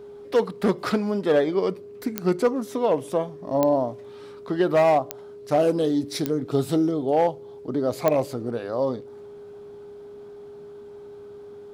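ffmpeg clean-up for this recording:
-af "adeclick=t=4,bandreject=f=410:w=30"

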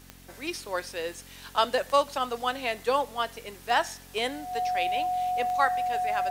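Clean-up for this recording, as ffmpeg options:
-af "adeclick=t=4,bandreject=f=45:t=h:w=4,bandreject=f=90:t=h:w=4,bandreject=f=135:t=h:w=4,bandreject=f=180:t=h:w=4,bandreject=f=225:t=h:w=4,bandreject=f=270:t=h:w=4,bandreject=f=730:w=30"

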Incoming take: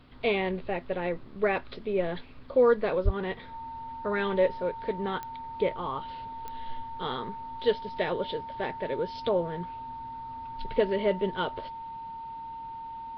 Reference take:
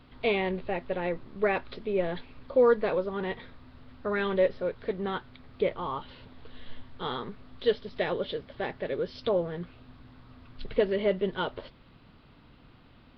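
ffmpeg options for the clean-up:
-filter_complex "[0:a]adeclick=t=4,bandreject=f=910:w=30,asplit=3[a][b][c];[a]afade=t=out:st=3.04:d=0.02[d];[b]highpass=f=140:w=0.5412,highpass=f=140:w=1.3066,afade=t=in:st=3.04:d=0.02,afade=t=out:st=3.16:d=0.02[e];[c]afade=t=in:st=3.16:d=0.02[f];[d][e][f]amix=inputs=3:normalize=0"

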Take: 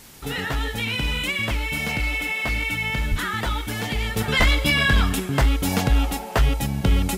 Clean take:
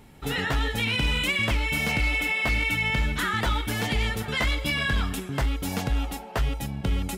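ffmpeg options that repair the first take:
-filter_complex "[0:a]asplit=3[a][b][c];[a]afade=t=out:st=3.1:d=0.02[d];[b]highpass=f=140:w=0.5412,highpass=f=140:w=1.3066,afade=t=in:st=3.1:d=0.02,afade=t=out:st=3.22:d=0.02[e];[c]afade=t=in:st=3.22:d=0.02[f];[d][e][f]amix=inputs=3:normalize=0,asplit=3[g][h][i];[g]afade=t=out:st=4.38:d=0.02[j];[h]highpass=f=140:w=0.5412,highpass=f=140:w=1.3066,afade=t=in:st=4.38:d=0.02,afade=t=out:st=4.5:d=0.02[k];[i]afade=t=in:st=4.5:d=0.02[l];[j][k][l]amix=inputs=3:normalize=0,afwtdn=0.005,asetnsamples=n=441:p=0,asendcmd='4.16 volume volume -7dB',volume=0dB"

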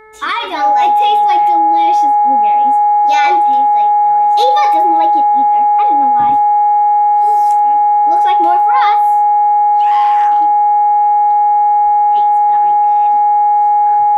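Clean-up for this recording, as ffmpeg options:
-af "bandreject=f=433.6:t=h:w=4,bandreject=f=867.2:t=h:w=4,bandreject=f=1.3008k:t=h:w=4,bandreject=f=1.7344k:t=h:w=4,bandreject=f=2.168k:t=h:w=4,bandreject=f=830:w=30"

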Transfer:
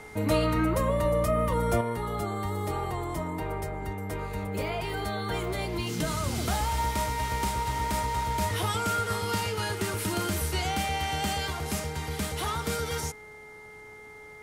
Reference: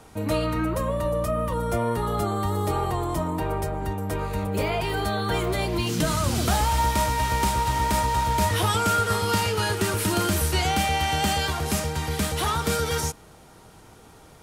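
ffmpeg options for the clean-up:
-af "bandreject=f=426:t=h:w=4,bandreject=f=852:t=h:w=4,bandreject=f=1.278k:t=h:w=4,bandreject=f=1.704k:t=h:w=4,bandreject=f=2.1k:w=30,asetnsamples=n=441:p=0,asendcmd='1.81 volume volume 6dB',volume=0dB"

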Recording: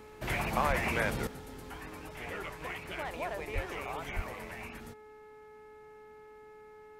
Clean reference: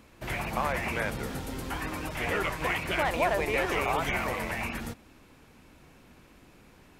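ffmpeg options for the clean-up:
-filter_complex "[0:a]bandreject=f=427.2:t=h:w=4,bandreject=f=854.4:t=h:w=4,bandreject=f=1.2816k:t=h:w=4,bandreject=f=1.7088k:t=h:w=4,bandreject=f=2.136k:t=h:w=4,asplit=3[a][b][c];[a]afade=t=out:st=0.67:d=0.02[d];[b]highpass=f=140:w=0.5412,highpass=f=140:w=1.3066,afade=t=in:st=0.67:d=0.02,afade=t=out:st=0.79:d=0.02[e];[c]afade=t=in:st=0.79:d=0.02[f];[d][e][f]amix=inputs=3:normalize=0,asplit=3[g][h][i];[g]afade=t=out:st=3.54:d=0.02[j];[h]highpass=f=140:w=0.5412,highpass=f=140:w=1.3066,afade=t=in:st=3.54:d=0.02,afade=t=out:st=3.66:d=0.02[k];[i]afade=t=in:st=3.66:d=0.02[l];[j][k][l]amix=inputs=3:normalize=0,asplit=3[m][n][o];[m]afade=t=out:st=4.15:d=0.02[p];[n]highpass=f=140:w=0.5412,highpass=f=140:w=1.3066,afade=t=in:st=4.15:d=0.02,afade=t=out:st=4.27:d=0.02[q];[o]afade=t=in:st=4.27:d=0.02[r];[p][q][r]amix=inputs=3:normalize=0,asetnsamples=n=441:p=0,asendcmd='1.27 volume volume 11dB',volume=0dB"

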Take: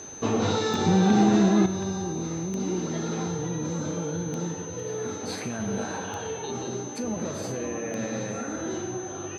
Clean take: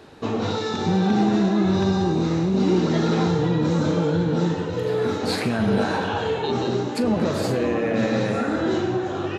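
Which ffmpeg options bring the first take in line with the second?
-af "adeclick=t=4,bandreject=f=6.2k:w=30,asetnsamples=n=441:p=0,asendcmd='1.66 volume volume 9.5dB',volume=0dB"

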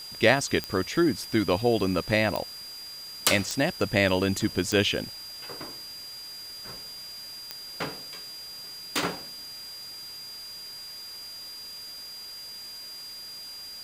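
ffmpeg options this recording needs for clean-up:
-af "adeclick=t=4,bandreject=f=4.8k:w=30,afwtdn=0.0045"

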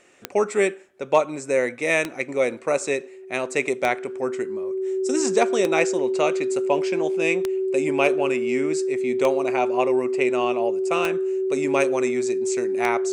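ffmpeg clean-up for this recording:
-af "adeclick=t=4,bandreject=f=380:w=30"

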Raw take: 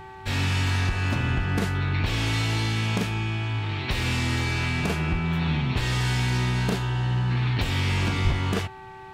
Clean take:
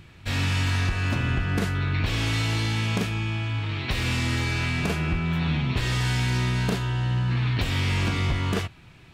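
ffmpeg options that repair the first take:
-filter_complex "[0:a]bandreject=f=383.5:t=h:w=4,bandreject=f=767:t=h:w=4,bandreject=f=1.1505k:t=h:w=4,bandreject=f=1.534k:t=h:w=4,bandreject=f=1.9175k:t=h:w=4,bandreject=f=880:w=30,asplit=3[a][b][c];[a]afade=t=out:st=8.23:d=0.02[d];[b]highpass=f=140:w=0.5412,highpass=f=140:w=1.3066,afade=t=in:st=8.23:d=0.02,afade=t=out:st=8.35:d=0.02[e];[c]afade=t=in:st=8.35:d=0.02[f];[d][e][f]amix=inputs=3:normalize=0"

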